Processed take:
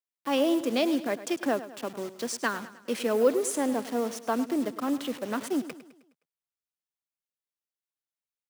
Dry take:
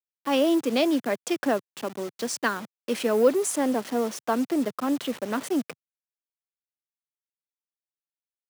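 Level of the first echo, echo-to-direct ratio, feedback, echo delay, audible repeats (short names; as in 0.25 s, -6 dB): -14.5 dB, -13.5 dB, 49%, 0.104 s, 4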